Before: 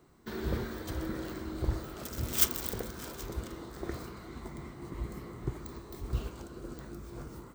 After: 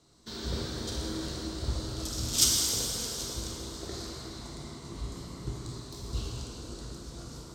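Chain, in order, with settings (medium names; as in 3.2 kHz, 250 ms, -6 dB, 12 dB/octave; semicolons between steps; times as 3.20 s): low-pass 7.4 kHz 12 dB/octave; resonant high shelf 3 kHz +12 dB, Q 1.5; band-stop 360 Hz, Q 12; plate-style reverb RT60 3 s, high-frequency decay 0.8×, DRR -3 dB; trim -4 dB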